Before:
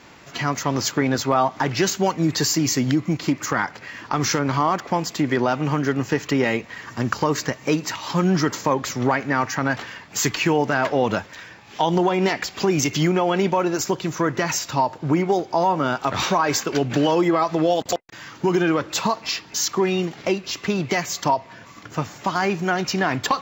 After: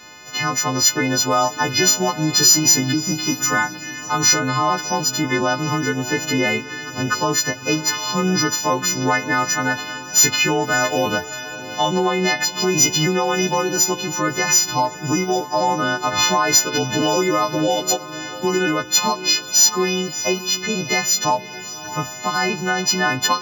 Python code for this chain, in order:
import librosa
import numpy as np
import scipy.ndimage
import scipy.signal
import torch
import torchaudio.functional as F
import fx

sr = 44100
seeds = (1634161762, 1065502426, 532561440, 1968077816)

y = fx.freq_snap(x, sr, grid_st=3)
y = fx.high_shelf(y, sr, hz=3900.0, db=-9.5, at=(3.62, 4.1))
y = fx.echo_diffused(y, sr, ms=609, feedback_pct=40, wet_db=-14)